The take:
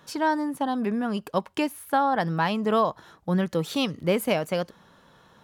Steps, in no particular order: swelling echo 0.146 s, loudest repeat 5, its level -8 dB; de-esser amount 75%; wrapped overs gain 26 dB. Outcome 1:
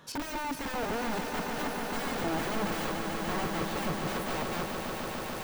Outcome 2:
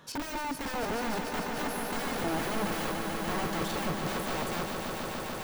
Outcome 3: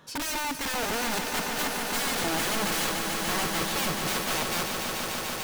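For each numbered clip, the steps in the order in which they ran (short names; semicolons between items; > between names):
wrapped overs > swelling echo > de-esser; wrapped overs > de-esser > swelling echo; de-esser > wrapped overs > swelling echo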